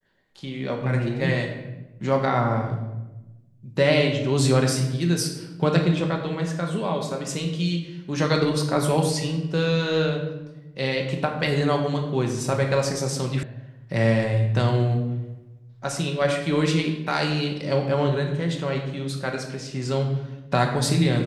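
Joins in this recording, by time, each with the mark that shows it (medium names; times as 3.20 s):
13.43 s: sound stops dead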